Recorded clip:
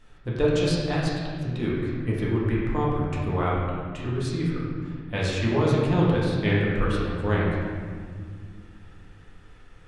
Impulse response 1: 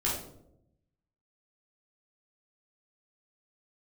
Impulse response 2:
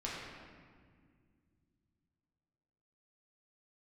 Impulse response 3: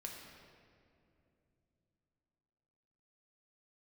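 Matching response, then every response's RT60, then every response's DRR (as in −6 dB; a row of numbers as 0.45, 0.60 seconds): 2; 0.80, 1.9, 2.8 seconds; −6.5, −6.5, −0.5 decibels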